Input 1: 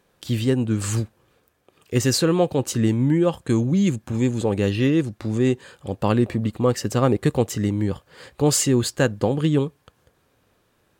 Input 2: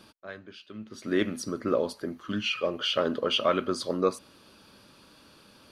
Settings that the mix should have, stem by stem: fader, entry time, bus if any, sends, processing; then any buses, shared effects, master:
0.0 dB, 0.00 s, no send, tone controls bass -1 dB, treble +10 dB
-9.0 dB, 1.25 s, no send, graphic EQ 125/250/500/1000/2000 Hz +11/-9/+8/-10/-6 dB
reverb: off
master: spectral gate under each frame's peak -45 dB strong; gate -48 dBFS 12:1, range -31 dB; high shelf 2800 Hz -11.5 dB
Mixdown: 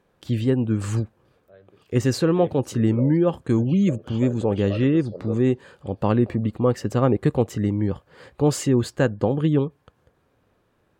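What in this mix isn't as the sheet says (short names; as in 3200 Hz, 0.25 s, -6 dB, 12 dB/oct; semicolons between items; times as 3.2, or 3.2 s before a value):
stem 1: missing tone controls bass -1 dB, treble +10 dB; master: missing gate -48 dBFS 12:1, range -31 dB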